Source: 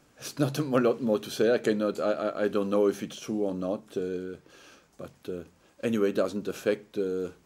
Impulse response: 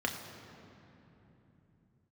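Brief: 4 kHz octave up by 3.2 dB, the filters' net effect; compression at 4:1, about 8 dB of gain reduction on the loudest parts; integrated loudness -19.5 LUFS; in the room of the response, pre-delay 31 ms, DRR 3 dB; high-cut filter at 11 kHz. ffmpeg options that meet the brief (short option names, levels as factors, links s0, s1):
-filter_complex "[0:a]lowpass=11000,equalizer=f=4000:t=o:g=4,acompressor=threshold=0.0355:ratio=4,asplit=2[s0][s1];[1:a]atrim=start_sample=2205,adelay=31[s2];[s1][s2]afir=irnorm=-1:irlink=0,volume=0.335[s3];[s0][s3]amix=inputs=2:normalize=0,volume=4.47"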